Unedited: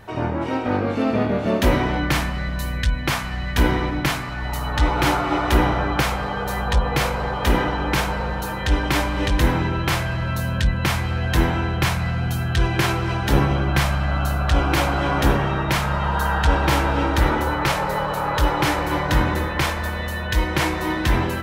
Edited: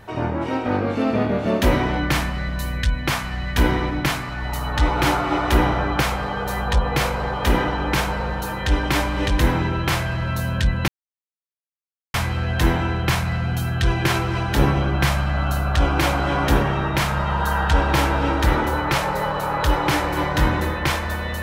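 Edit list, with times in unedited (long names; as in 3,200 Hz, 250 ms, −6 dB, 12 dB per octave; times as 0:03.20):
0:10.88: splice in silence 1.26 s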